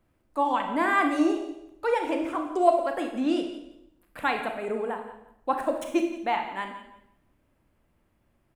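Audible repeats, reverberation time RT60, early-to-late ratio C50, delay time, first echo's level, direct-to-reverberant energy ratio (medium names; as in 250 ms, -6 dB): 2, 0.80 s, 6.5 dB, 172 ms, -14.5 dB, 4.0 dB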